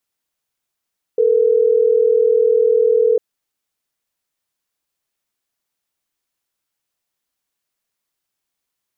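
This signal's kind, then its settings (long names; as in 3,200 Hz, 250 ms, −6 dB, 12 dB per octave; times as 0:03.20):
call progress tone ringback tone, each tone −13.5 dBFS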